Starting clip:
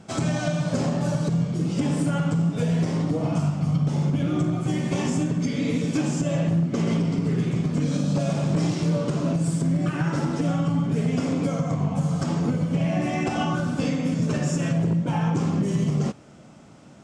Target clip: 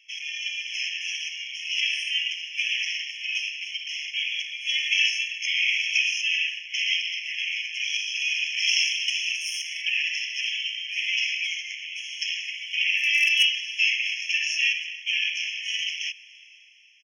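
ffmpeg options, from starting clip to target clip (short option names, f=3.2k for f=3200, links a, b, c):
-filter_complex "[0:a]aeval=exprs='0.188*(cos(1*acos(clip(val(0)/0.188,-1,1)))-cos(1*PI/2))+0.0106*(cos(3*acos(clip(val(0)/0.188,-1,1)))-cos(3*PI/2))+0.00841*(cos(4*acos(clip(val(0)/0.188,-1,1)))-cos(4*PI/2))':c=same,firequalizer=gain_entry='entry(150,0);entry(1700,-6);entry(2500,13);entry(5300,1);entry(7900,-25)':delay=0.05:min_phase=1,dynaudnorm=f=110:g=13:m=12dB,asettb=1/sr,asplit=3[a][b][c];[a]atrim=end=8.674[d];[b]atrim=start=8.67:end=9.82,asetpts=PTS-STARTPTS,afade=t=in:d=0.004:c=qsin,afade=t=out:st=1.146:d=0.004:c=qsin,aemphasis=mode=production:type=bsi[e];[c]atrim=start=9.816[f];[d][e]acrossfade=d=0.004:c1=hsin:c2=qsin[g];[g][f]acrossfade=d=0.004:c1=qsin:c2=hsin,crystalizer=i=2:c=0,asplit=3[h][i][j];[h]afade=t=out:st=12.97:d=0.02[k];[i]aeval=exprs='0.501*(abs(mod(val(0)/0.501+3,4)-2)-1)':c=same,afade=t=in:st=12.97:d=0.02,afade=t=out:st=13.43:d=0.02[l];[j]afade=t=in:st=13.43:d=0.02[m];[k][l][m]amix=inputs=3:normalize=0,afftfilt=real='re*eq(mod(floor(b*sr/1024/1700),2),1)':imag='im*eq(mod(floor(b*sr/1024/1700),2),1)':win_size=1024:overlap=0.75,volume=-3.5dB"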